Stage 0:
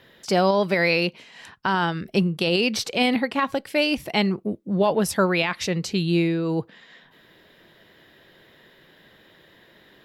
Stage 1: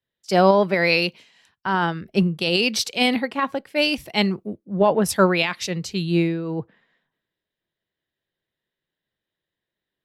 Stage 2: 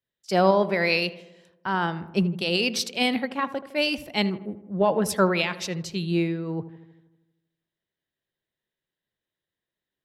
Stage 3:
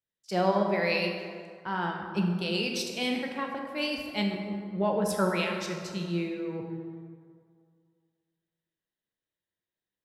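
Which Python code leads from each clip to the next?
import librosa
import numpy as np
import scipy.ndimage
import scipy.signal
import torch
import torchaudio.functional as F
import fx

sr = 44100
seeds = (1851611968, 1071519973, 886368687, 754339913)

y1 = fx.band_widen(x, sr, depth_pct=100)
y2 = fx.echo_filtered(y1, sr, ms=79, feedback_pct=64, hz=1800.0, wet_db=-14.5)
y2 = y2 * librosa.db_to_amplitude(-4.0)
y3 = fx.rev_plate(y2, sr, seeds[0], rt60_s=2.1, hf_ratio=0.5, predelay_ms=0, drr_db=1.5)
y3 = y3 * librosa.db_to_amplitude(-7.5)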